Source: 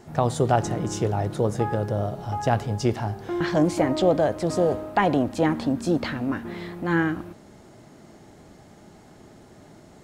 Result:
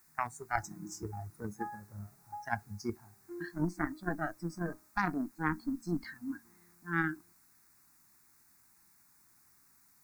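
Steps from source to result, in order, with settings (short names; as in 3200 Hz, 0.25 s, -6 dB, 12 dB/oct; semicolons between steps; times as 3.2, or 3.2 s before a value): HPF 120 Hz 6 dB/oct; de-hum 186.9 Hz, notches 4; added harmonics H 2 -16 dB, 3 -11 dB, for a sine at -6.5 dBFS; reverse; compressor 5:1, threshold -30 dBFS, peak gain reduction 12 dB; reverse; spectral noise reduction 19 dB; requantised 12-bit, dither triangular; fixed phaser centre 1300 Hz, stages 4; gain +8 dB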